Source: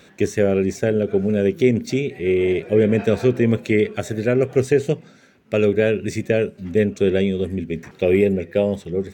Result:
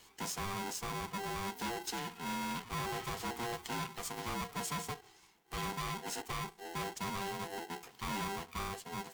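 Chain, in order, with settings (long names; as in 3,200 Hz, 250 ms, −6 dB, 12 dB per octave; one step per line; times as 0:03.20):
spectral magnitudes quantised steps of 15 dB
soft clipping −20 dBFS, distortion −8 dB
first-order pre-emphasis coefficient 0.8
ring modulator with a square carrier 590 Hz
level −1.5 dB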